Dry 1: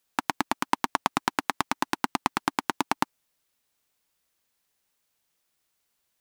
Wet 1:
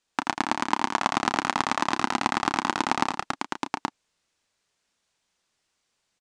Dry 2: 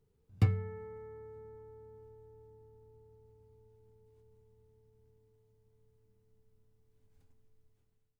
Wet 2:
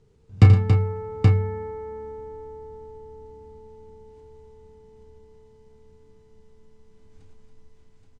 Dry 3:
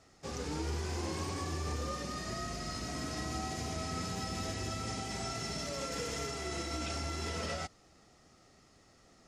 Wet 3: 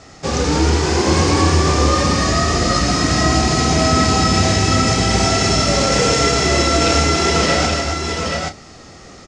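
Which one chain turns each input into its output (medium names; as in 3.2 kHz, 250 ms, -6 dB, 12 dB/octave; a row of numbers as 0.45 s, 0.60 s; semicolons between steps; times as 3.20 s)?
low-pass 8 kHz 24 dB/octave; doubling 31 ms -10 dB; on a send: multi-tap echo 82/118/279/826 ms -9/-12.5/-7/-4 dB; on the sum: peak normalisation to -1.5 dBFS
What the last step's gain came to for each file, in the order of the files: +0.5 dB, +13.5 dB, +20.0 dB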